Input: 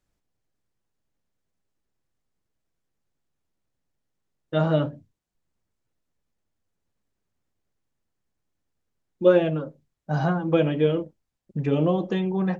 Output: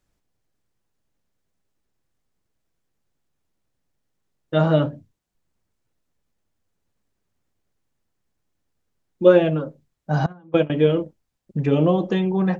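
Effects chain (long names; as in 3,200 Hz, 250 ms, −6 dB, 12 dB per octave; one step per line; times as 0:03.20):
0:10.26–0:10.70: noise gate −18 dBFS, range −24 dB
level +4 dB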